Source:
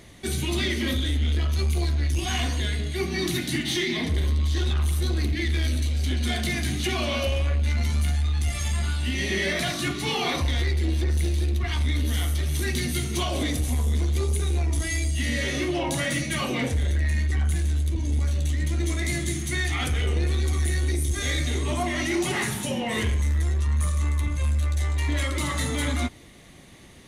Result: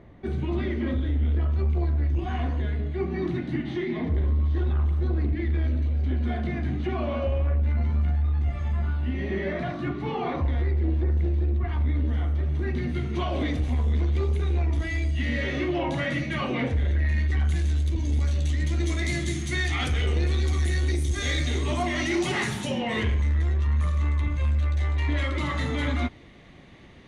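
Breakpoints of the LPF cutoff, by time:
12.6 s 1200 Hz
13.5 s 2500 Hz
16.96 s 2500 Hz
17.68 s 6100 Hz
22.59 s 6100 Hz
23.08 s 3100 Hz

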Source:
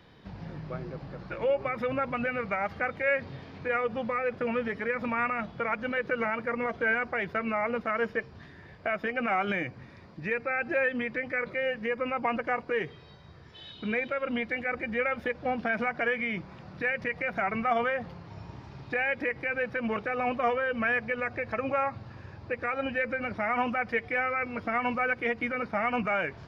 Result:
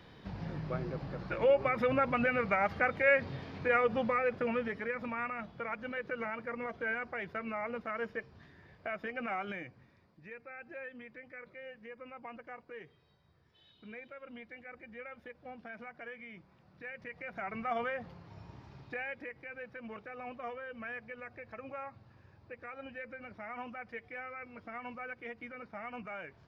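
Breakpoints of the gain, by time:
3.99 s +0.5 dB
5.2 s -8.5 dB
9.28 s -8.5 dB
10.19 s -18 dB
16.64 s -18 dB
17.77 s -7.5 dB
18.76 s -7.5 dB
19.34 s -15 dB

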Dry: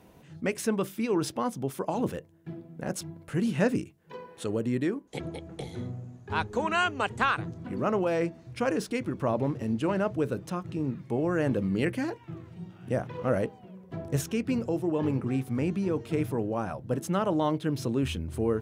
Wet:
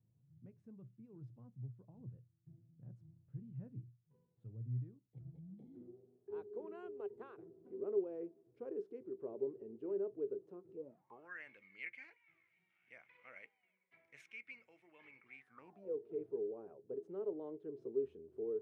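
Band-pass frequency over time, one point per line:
band-pass, Q 17
5.23 s 120 Hz
5.98 s 400 Hz
10.72 s 400 Hz
11.44 s 2200 Hz
15.38 s 2200 Hz
15.96 s 410 Hz

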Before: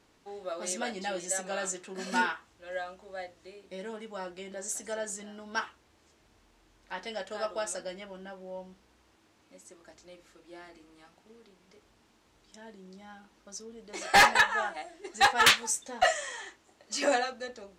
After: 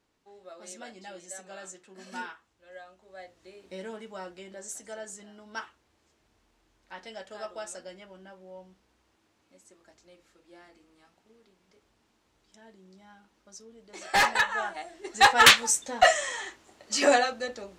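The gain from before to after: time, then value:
2.89 s -10 dB
3.69 s +1.5 dB
4.85 s -5 dB
13.97 s -5 dB
15.39 s +5.5 dB

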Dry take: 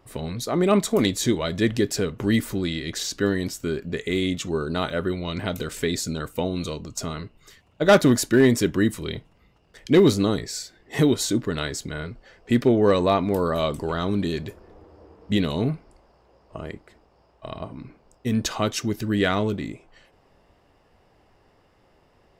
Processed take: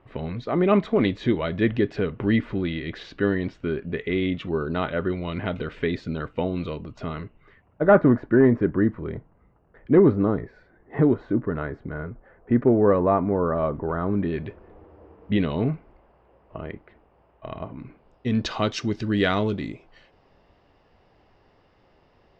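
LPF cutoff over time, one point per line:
LPF 24 dB/oct
7.16 s 2900 Hz
7.88 s 1600 Hz
14.04 s 1600 Hz
14.45 s 2800 Hz
17.71 s 2800 Hz
18.62 s 5200 Hz

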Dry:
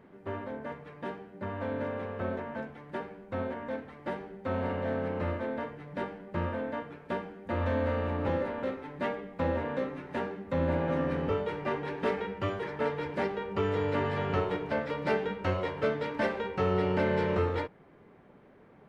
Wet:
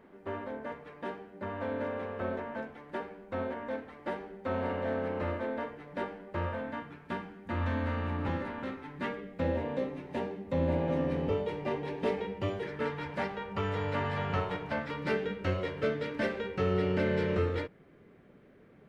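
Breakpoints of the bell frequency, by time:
bell -9.5 dB 0.79 oct
6.22 s 130 Hz
6.77 s 530 Hz
8.9 s 530 Hz
9.65 s 1400 Hz
12.53 s 1400 Hz
13.13 s 360 Hz
14.65 s 360 Hz
15.23 s 890 Hz

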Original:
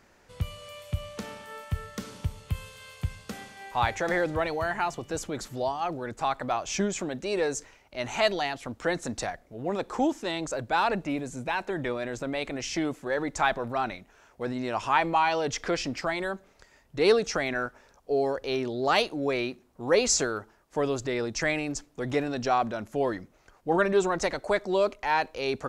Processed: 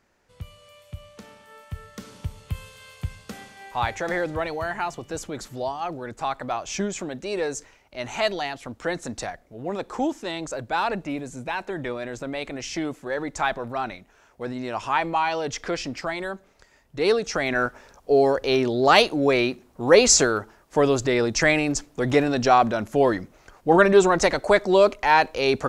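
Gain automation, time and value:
1.36 s -7 dB
2.43 s +0.5 dB
17.24 s +0.5 dB
17.65 s +8 dB

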